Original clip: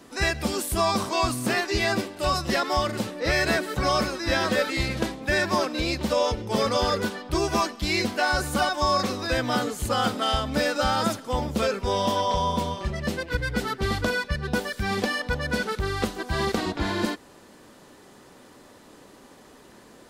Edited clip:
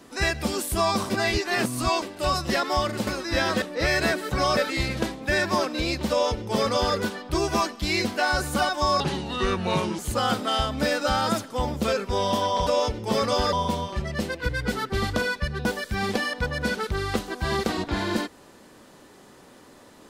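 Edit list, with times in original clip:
1.1–2.02 reverse
4.02–4.57 move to 3.07
6.1–6.96 copy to 12.41
9–9.73 speed 74%

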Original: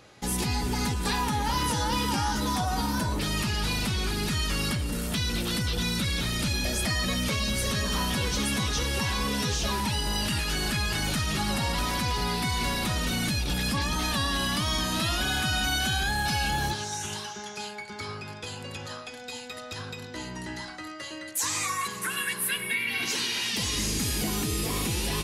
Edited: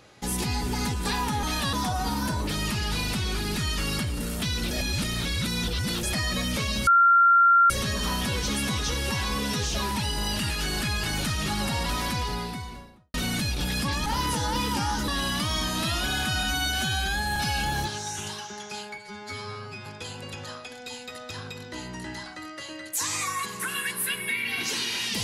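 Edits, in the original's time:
1.43–2.45 swap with 13.95–14.25
5.43–6.75 reverse
7.59 add tone 1380 Hz -14 dBFS 0.83 s
11.93–13.03 studio fade out
15.6–16.22 stretch 1.5×
17.84–18.28 stretch 2×

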